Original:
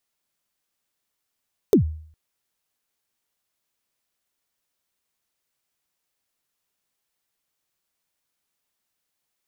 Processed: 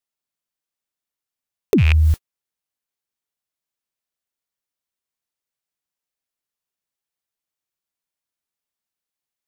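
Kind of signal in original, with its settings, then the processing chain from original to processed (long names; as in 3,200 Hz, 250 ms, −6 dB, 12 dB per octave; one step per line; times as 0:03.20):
synth kick length 0.41 s, from 470 Hz, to 78 Hz, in 104 ms, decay 0.55 s, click on, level −8.5 dB
loose part that buzzes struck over −29 dBFS, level −23 dBFS
noise gate −50 dBFS, range −49 dB
envelope flattener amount 100%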